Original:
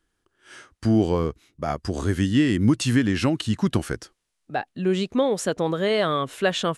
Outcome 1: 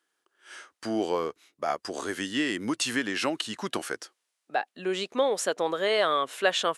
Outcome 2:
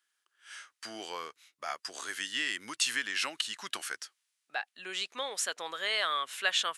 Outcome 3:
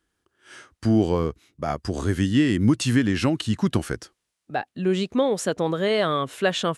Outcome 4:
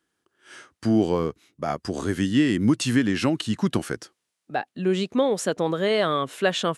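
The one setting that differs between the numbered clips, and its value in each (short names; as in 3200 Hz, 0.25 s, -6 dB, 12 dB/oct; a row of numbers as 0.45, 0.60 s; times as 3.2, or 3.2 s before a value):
HPF, cutoff: 490, 1500, 45, 140 Hz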